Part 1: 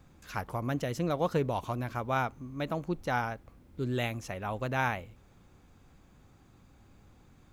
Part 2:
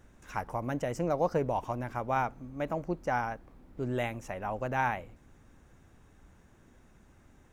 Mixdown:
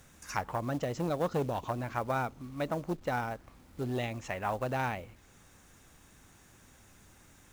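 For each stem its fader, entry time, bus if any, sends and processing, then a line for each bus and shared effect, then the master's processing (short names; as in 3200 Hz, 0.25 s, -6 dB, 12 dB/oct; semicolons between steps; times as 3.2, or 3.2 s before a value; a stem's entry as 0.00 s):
-2.0 dB, 0.00 s, no send, elliptic low-pass 7300 Hz; notch 1600 Hz, Q 21
+1.0 dB, 0.00 s, no send, treble ducked by the level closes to 350 Hz, closed at -27.5 dBFS; tilt +4 dB/oct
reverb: off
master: companded quantiser 6-bit; core saturation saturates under 660 Hz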